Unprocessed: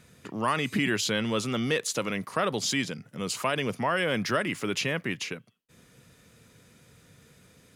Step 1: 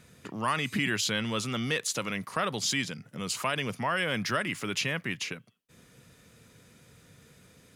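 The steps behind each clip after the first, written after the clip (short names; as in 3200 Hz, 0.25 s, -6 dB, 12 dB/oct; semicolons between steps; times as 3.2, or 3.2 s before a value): dynamic EQ 410 Hz, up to -6 dB, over -41 dBFS, Q 0.71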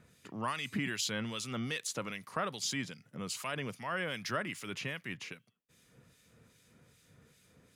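harmonic tremolo 2.5 Hz, depth 70%, crossover 2000 Hz; gain -4 dB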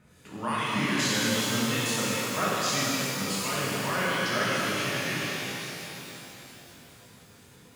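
shimmer reverb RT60 3.5 s, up +12 st, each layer -8 dB, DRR -9 dB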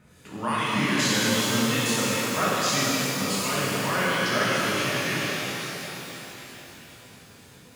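delay with a stepping band-pass 0.266 s, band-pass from 320 Hz, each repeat 0.7 oct, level -7.5 dB; gain +3 dB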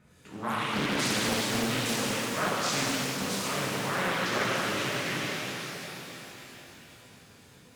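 Doppler distortion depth 0.86 ms; gain -4.5 dB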